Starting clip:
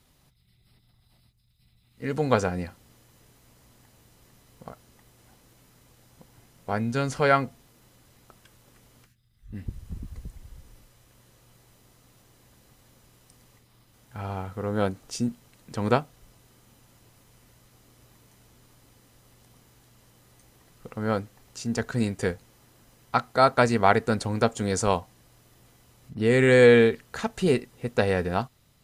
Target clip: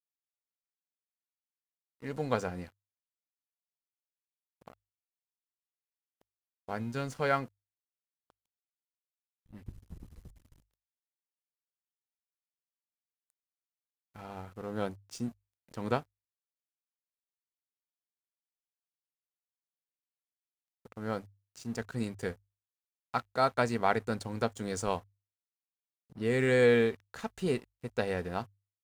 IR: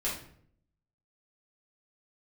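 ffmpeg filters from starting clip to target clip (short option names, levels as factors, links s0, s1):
-af "aeval=exprs='sgn(val(0))*max(abs(val(0))-0.00668,0)':c=same,bandreject=f=50:t=h:w=6,bandreject=f=100:t=h:w=6,volume=0.398"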